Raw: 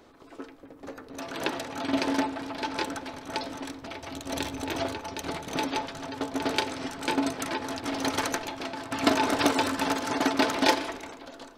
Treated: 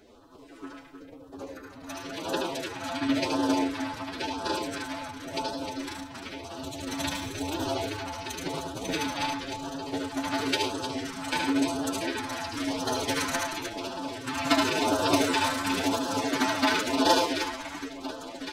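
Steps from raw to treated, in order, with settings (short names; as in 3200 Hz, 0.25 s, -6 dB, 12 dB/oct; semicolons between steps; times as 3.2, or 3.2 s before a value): tapped delay 47/49/68/192/885 ms -4.5/-11/-9/-8/-12.5 dB; time stretch by phase-locked vocoder 1.6×; LFO notch sine 0.95 Hz 390–2200 Hz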